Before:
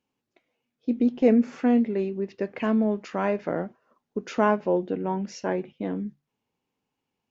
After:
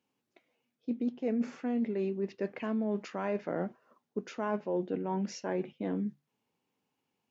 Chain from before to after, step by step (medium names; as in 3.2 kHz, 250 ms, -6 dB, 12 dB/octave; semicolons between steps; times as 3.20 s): reverse; compression 6:1, threshold -29 dBFS, peak gain reduction 14.5 dB; reverse; high-pass 110 Hz